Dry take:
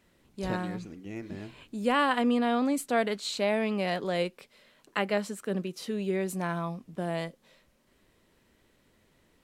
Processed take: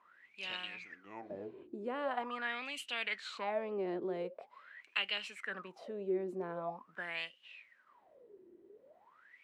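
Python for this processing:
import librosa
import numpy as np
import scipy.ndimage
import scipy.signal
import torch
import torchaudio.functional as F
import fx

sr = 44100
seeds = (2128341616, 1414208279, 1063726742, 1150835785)

y = fx.wah_lfo(x, sr, hz=0.44, low_hz=350.0, high_hz=2900.0, q=21.0)
y = fx.spectral_comp(y, sr, ratio=2.0)
y = F.gain(torch.from_numpy(y), 8.0).numpy()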